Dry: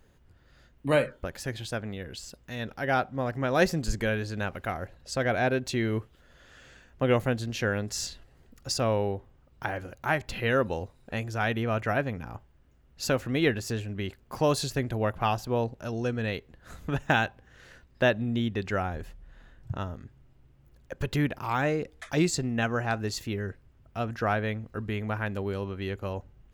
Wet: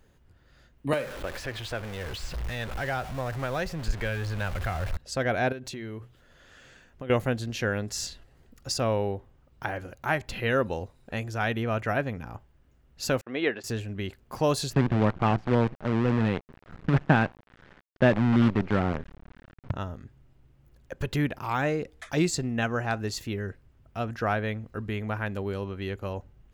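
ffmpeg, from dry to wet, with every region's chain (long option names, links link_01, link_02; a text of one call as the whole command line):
ffmpeg -i in.wav -filter_complex "[0:a]asettb=1/sr,asplit=3[link_01][link_02][link_03];[link_01]atrim=end=0.934[link_04];[link_02]atrim=start=0.93:end=4.97,asetpts=PTS-STARTPTS,afade=type=in:duration=0.004:curve=qsin,afade=type=out:start_time=4.036:duration=0.004:curve=qsin,aeval=exprs='val(0)+0.5*0.0251*sgn(val(0))':channel_layout=same,acrossover=split=300|3900[link_05][link_06][link_07];[link_05]acompressor=threshold=-42dB:ratio=4[link_08];[link_06]acompressor=threshold=-27dB:ratio=4[link_09];[link_07]acompressor=threshold=-50dB:ratio=4[link_10];[link_08][link_09][link_10]amix=inputs=3:normalize=0,asubboost=boost=10.5:cutoff=100[link_11];[link_03]atrim=start=4.966[link_12];[link_04][link_11]acrossfade=duration=0.004:curve1=hsin:curve2=qsin[link_13];[link_13][link_12]acrossfade=duration=0.004:curve1=qsin:curve2=hsin,asettb=1/sr,asplit=3[link_14][link_15][link_16];[link_14]atrim=end=5.524[link_17];[link_15]atrim=start=5.52:end=7.1,asetpts=PTS-STARTPTS,afade=type=in:duration=0.004:curve=qsin,afade=type=out:start_time=1.576:duration=0.004:curve=qsin,bandreject=frequency=60:width_type=h:width=6,bandreject=frequency=120:width_type=h:width=6,acompressor=threshold=-34dB:ratio=6:attack=3.2:release=140:knee=1:detection=peak[link_18];[link_16]atrim=start=7.096[link_19];[link_17][link_18]acrossfade=duration=0.004:curve1=hsin:curve2=qsin[link_20];[link_20][link_19]acrossfade=duration=0.004:curve1=qsin:curve2=hsin,asettb=1/sr,asplit=3[link_21][link_22][link_23];[link_21]atrim=end=13.214[link_24];[link_22]atrim=start=13.21:end=13.64,asetpts=PTS-STARTPTS,afade=type=in:duration=0.004:curve=qsin,afade=type=out:start_time=0.426:duration=0.004:curve=qsin,agate=range=-39dB:threshold=-37dB:ratio=16:release=100:detection=peak,highpass=340,lowpass=3200[link_25];[link_23]atrim=start=13.636[link_26];[link_24][link_25]acrossfade=duration=0.004:curve1=hsin:curve2=qsin[link_27];[link_27][link_26]acrossfade=duration=0.004:curve1=qsin:curve2=hsin,asettb=1/sr,asplit=3[link_28][link_29][link_30];[link_28]atrim=end=14.734[link_31];[link_29]atrim=start=14.73:end=19.71,asetpts=PTS-STARTPTS,afade=type=in:duration=0.004:curve=qsin,afade=type=out:start_time=4.976:duration=0.004:curve=qsin,equalizer=frequency=180:width_type=o:width=1.5:gain=10,acrusher=bits=5:dc=4:mix=0:aa=0.000001,lowpass=2200[link_32];[link_30]atrim=start=19.706[link_33];[link_31][link_32]acrossfade=duration=0.004:curve1=hsin:curve2=qsin[link_34];[link_34][link_33]acrossfade=duration=0.004:curve1=qsin:curve2=hsin" out.wav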